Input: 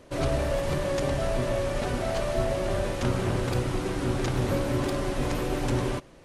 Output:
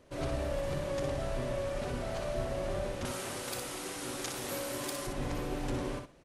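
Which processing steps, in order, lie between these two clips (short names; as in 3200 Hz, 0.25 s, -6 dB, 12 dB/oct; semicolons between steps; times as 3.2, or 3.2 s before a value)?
3.05–5.07 RIAA curve recording; on a send: feedback echo 61 ms, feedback 16%, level -6 dB; on the sum: gain -9 dB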